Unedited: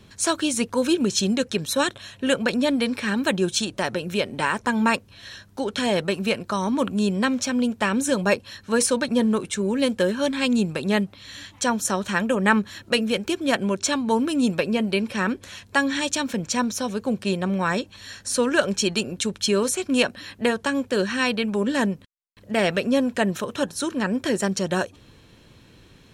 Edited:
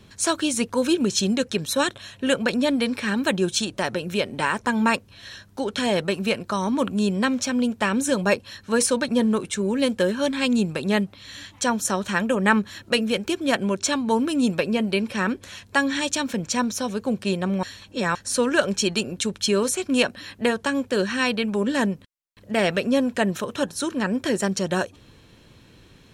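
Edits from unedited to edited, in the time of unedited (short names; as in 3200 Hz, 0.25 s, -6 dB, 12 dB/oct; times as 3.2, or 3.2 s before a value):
17.63–18.15 reverse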